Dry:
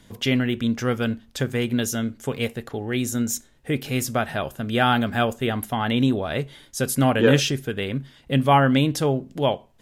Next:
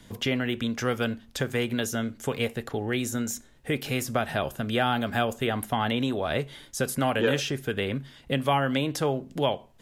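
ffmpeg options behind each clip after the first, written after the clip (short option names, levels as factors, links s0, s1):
-filter_complex "[0:a]acrossover=split=460|1100|2200[s0][s1][s2][s3];[s0]acompressor=threshold=0.0316:ratio=4[s4];[s1]acompressor=threshold=0.0447:ratio=4[s5];[s2]acompressor=threshold=0.0158:ratio=4[s6];[s3]acompressor=threshold=0.02:ratio=4[s7];[s4][s5][s6][s7]amix=inputs=4:normalize=0,volume=1.12"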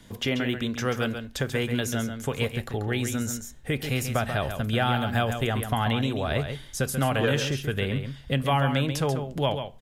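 -af "asubboost=boost=3:cutoff=140,aecho=1:1:137:0.398"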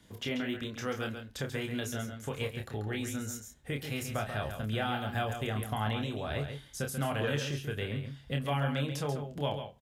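-filter_complex "[0:a]highpass=42,asplit=2[s0][s1];[s1]adelay=28,volume=0.562[s2];[s0][s2]amix=inputs=2:normalize=0,volume=0.355"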